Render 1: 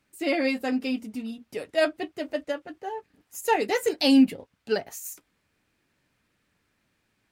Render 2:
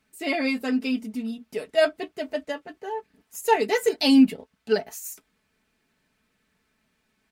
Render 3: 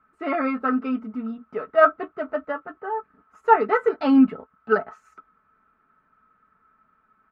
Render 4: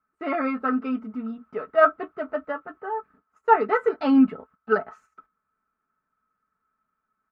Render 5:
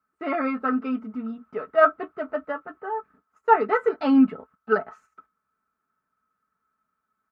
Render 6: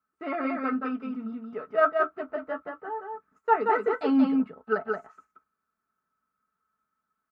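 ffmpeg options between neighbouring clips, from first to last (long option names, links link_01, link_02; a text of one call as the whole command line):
ffmpeg -i in.wav -af "aecho=1:1:4.6:0.57" out.wav
ffmpeg -i in.wav -af "lowpass=frequency=1300:width_type=q:width=15" out.wav
ffmpeg -i in.wav -af "agate=range=-13dB:threshold=-50dB:ratio=16:detection=peak,volume=-1.5dB" out.wav
ffmpeg -i in.wav -af "highpass=51" out.wav
ffmpeg -i in.wav -af "aecho=1:1:178:0.668,volume=-5dB" out.wav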